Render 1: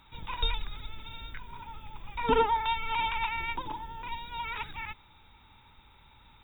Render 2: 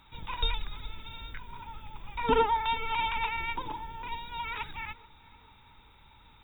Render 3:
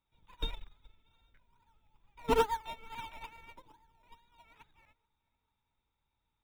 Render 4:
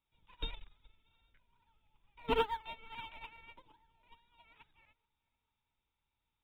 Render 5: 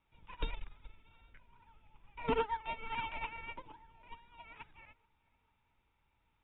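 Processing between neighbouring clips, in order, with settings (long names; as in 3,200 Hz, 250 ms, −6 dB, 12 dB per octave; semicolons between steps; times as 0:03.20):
feedback echo with a low-pass in the loop 436 ms, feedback 63%, low-pass 1,500 Hz, level −20 dB
in parallel at −8 dB: sample-and-hold swept by an LFO 22×, swing 60% 2.3 Hz; on the sum: expander for the loud parts 2.5 to 1, over −36 dBFS; level −3 dB
high shelf with overshoot 4,200 Hz −10 dB, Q 3; level −4.5 dB
low-pass filter 2,800 Hz 24 dB per octave; downward compressor 2.5 to 1, threshold −46 dBFS, peak gain reduction 13.5 dB; level +11 dB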